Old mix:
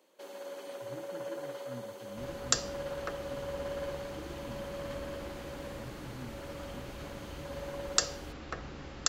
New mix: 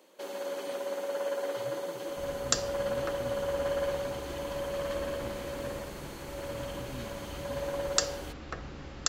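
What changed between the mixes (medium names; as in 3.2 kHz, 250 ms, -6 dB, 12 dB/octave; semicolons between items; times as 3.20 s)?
speech: entry +0.75 s; first sound +7.0 dB; master: add bass shelf 150 Hz +3 dB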